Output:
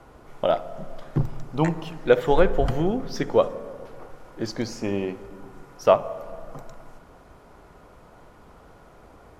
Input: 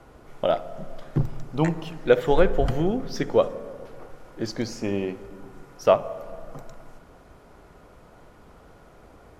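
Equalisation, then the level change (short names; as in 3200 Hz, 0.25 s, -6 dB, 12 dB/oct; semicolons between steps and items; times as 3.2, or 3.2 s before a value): bell 970 Hz +3 dB 0.77 oct; 0.0 dB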